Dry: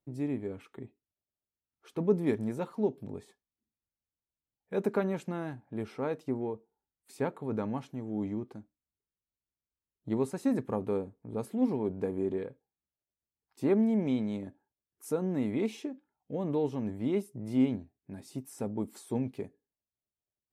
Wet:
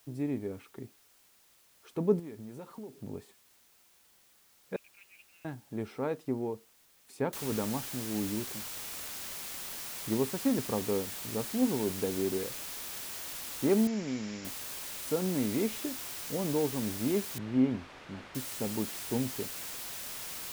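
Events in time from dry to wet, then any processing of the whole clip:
0:02.19–0:03.02: downward compressor 8 to 1, threshold −40 dBFS
0:04.76–0:05.45: flat-topped band-pass 2,600 Hz, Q 4.9
0:07.33: noise floor change −64 dB −41 dB
0:13.87–0:14.45: Chebyshev low-pass with heavy ripple 7,300 Hz, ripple 6 dB
0:17.38–0:18.35: low-pass filter 2,200 Hz

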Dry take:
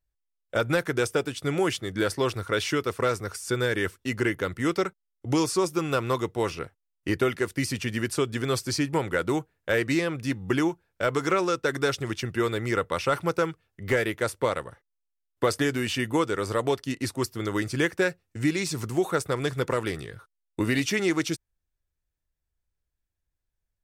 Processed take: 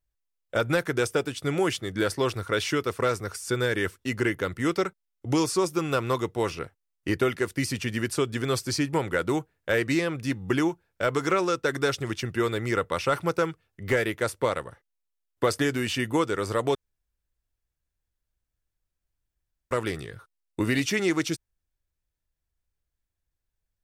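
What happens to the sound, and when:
0:16.75–0:19.71: fill with room tone

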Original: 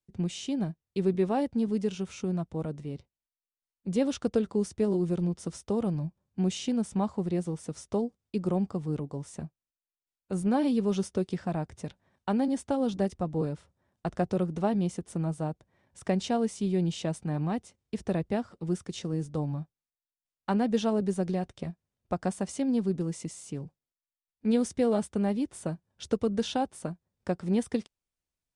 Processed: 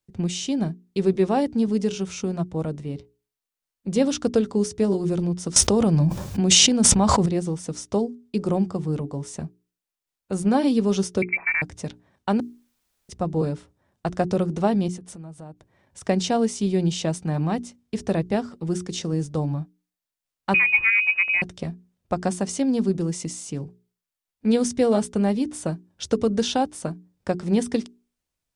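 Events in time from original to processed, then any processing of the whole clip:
0:05.56–0:07.26: envelope flattener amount 100%
0:11.22–0:11.62: voice inversion scrambler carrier 2,500 Hz
0:12.40–0:13.09: fill with room tone
0:14.88–0:16.09: downward compressor 5 to 1, threshold −45 dBFS
0:20.54–0:21.42: voice inversion scrambler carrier 2,700 Hz
whole clip: mains-hum notches 60/120/180/240/300/360/420 Hz; dynamic equaliser 5,800 Hz, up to +5 dB, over −59 dBFS, Q 1.2; level +6.5 dB

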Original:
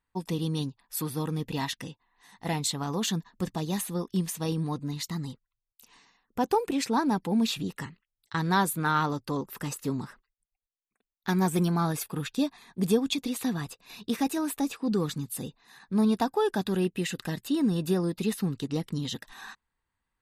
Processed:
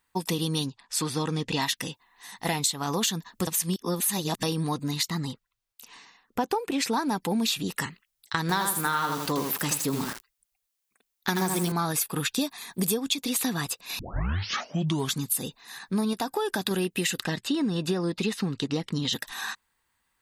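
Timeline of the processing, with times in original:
0:00.66–0:01.62: low-pass filter 7,900 Hz 24 dB per octave
0:03.47–0:04.43: reverse
0:05.03–0:06.85: high-shelf EQ 5,300 Hz −9.5 dB
0:08.41–0:11.72: feedback echo at a low word length 80 ms, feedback 35%, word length 7 bits, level −4.5 dB
0:12.41–0:12.94: high-shelf EQ 9,000 Hz +9.5 dB
0:13.99: tape start 1.20 s
0:16.13–0:16.71: downward compressor 2.5 to 1, threshold −28 dBFS
0:17.23–0:19.13: high-frequency loss of the air 87 metres
whole clip: spectral tilt +2 dB per octave; downward compressor, threshold −32 dBFS; level +8.5 dB

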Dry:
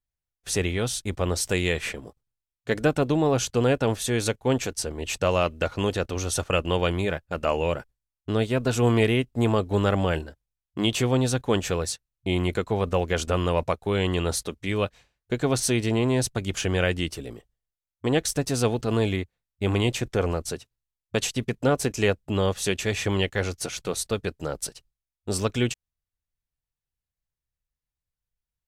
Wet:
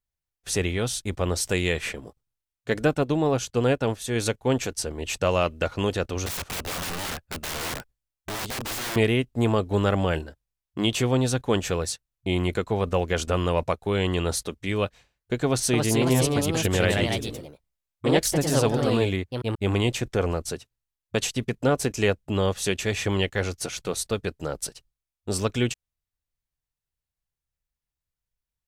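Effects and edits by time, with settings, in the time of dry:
0:02.94–0:04.16: expander for the loud parts, over −33 dBFS
0:06.26–0:08.96: wrap-around overflow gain 26.5 dB
0:15.45–0:19.74: delay with pitch and tempo change per echo 282 ms, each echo +2 semitones, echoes 2

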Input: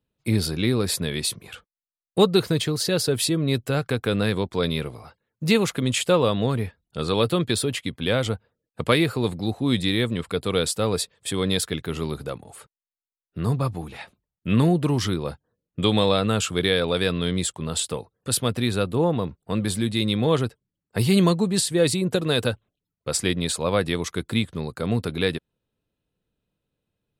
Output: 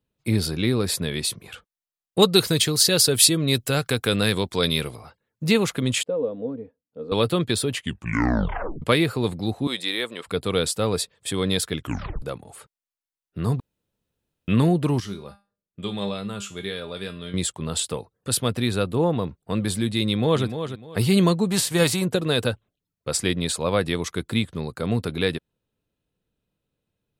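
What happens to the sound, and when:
0:02.22–0:04.96: high-shelf EQ 2,800 Hz +11.5 dB
0:06.03–0:07.12: pair of resonant band-passes 360 Hz, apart 0.75 octaves
0:07.74: tape stop 1.08 s
0:09.67–0:10.26: high-pass filter 500 Hz
0:11.78: tape stop 0.44 s
0:13.60–0:14.48: fill with room tone
0:15.00–0:17.34: tuned comb filter 200 Hz, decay 0.29 s, mix 80%
0:20.05–0:20.45: delay throw 300 ms, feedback 25%, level −9 dB
0:21.50–0:22.04: spectral envelope flattened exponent 0.6

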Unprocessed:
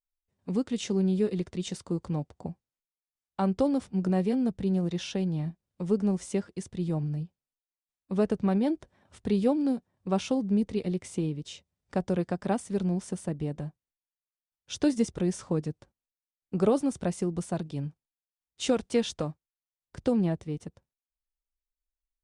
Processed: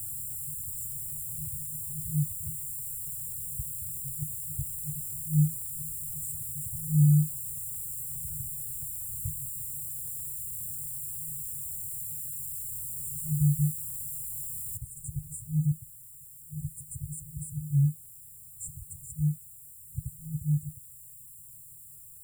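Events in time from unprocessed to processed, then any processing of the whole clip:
0:01.54–0:04.23: inverse Chebyshev low-pass filter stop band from 500 Hz, stop band 60 dB
0:07.19: noise floor change −69 dB −57 dB
0:09.61–0:13.02: formant filter that steps through the vowels 4.3 Hz
0:14.77: noise floor change −40 dB −54 dB
whole clip: brick-wall band-stop 160–7,100 Hz; parametric band 250 Hz +9.5 dB 2.9 octaves; level +4.5 dB

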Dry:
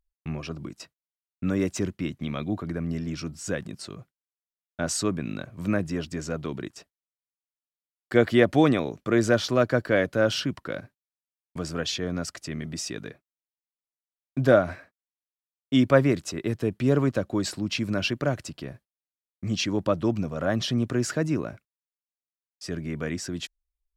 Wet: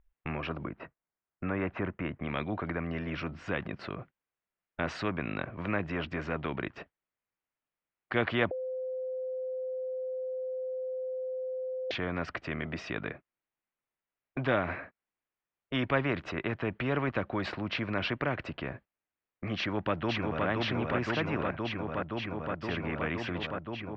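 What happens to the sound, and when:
0:00.64–0:02.29: low-pass filter 1,800 Hz
0:08.51–0:11.91: beep over 515 Hz −22 dBFS
0:19.56–0:20.46: delay throw 520 ms, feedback 80%, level −2.5 dB
whole clip: low-pass filter 2,500 Hz 24 dB per octave; every bin compressed towards the loudest bin 2 to 1; level −8 dB

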